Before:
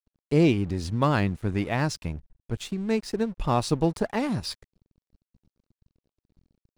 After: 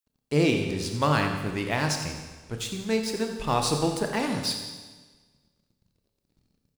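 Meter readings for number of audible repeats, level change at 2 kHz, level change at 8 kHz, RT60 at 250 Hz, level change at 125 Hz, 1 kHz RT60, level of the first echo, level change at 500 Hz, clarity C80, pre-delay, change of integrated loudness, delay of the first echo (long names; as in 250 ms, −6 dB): 1, +3.5 dB, +7.0 dB, 1.4 s, −3.0 dB, 1.4 s, −12.0 dB, 0.0 dB, 6.0 dB, 27 ms, −0.5 dB, 87 ms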